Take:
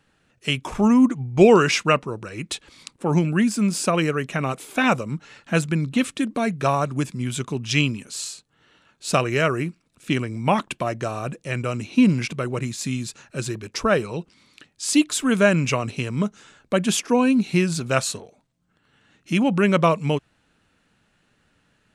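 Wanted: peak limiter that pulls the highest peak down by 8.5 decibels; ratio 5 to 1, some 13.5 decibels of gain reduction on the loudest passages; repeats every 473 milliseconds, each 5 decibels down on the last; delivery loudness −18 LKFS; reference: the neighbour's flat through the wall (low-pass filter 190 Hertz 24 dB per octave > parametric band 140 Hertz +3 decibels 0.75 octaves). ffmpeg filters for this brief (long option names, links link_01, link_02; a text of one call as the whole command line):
ffmpeg -i in.wav -af "acompressor=threshold=-24dB:ratio=5,alimiter=limit=-19.5dB:level=0:latency=1,lowpass=frequency=190:width=0.5412,lowpass=frequency=190:width=1.3066,equalizer=frequency=140:width_type=o:width=0.75:gain=3,aecho=1:1:473|946|1419|1892|2365|2838|3311:0.562|0.315|0.176|0.0988|0.0553|0.031|0.0173,volume=15.5dB" out.wav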